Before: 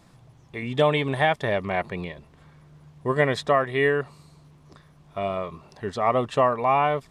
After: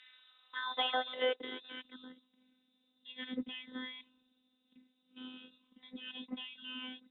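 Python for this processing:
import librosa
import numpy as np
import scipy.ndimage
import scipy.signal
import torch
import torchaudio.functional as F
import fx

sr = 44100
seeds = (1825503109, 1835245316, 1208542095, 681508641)

y = fx.freq_invert(x, sr, carrier_hz=3800)
y = fx.robotise(y, sr, hz=255.0)
y = fx.filter_sweep_bandpass(y, sr, from_hz=1900.0, to_hz=230.0, start_s=0.01, end_s=2.0, q=3.9)
y = y * librosa.db_to_amplitude(10.0)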